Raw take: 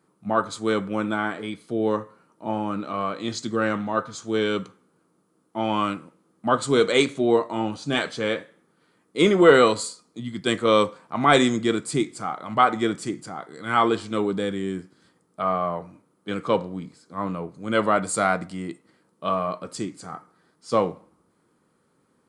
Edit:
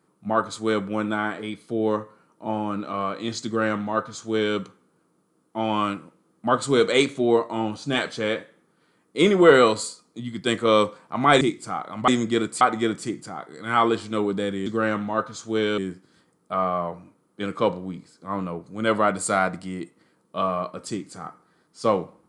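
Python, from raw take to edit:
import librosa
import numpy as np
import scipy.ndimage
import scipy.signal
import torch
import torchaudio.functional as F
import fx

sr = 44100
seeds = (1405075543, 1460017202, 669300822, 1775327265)

y = fx.edit(x, sr, fx.duplicate(start_s=3.45, length_s=1.12, to_s=14.66),
    fx.move(start_s=11.41, length_s=0.53, to_s=12.61), tone=tone)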